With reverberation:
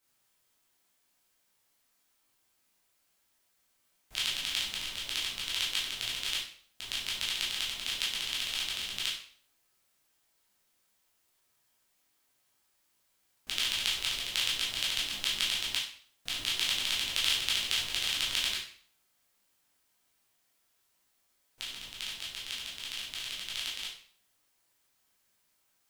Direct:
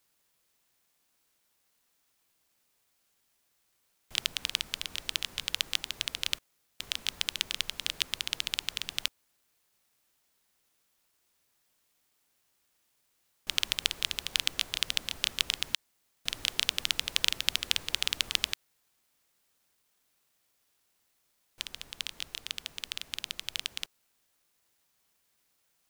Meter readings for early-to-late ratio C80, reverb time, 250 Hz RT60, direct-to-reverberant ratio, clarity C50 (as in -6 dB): 8.5 dB, 0.50 s, 0.50 s, -7.0 dB, 4.5 dB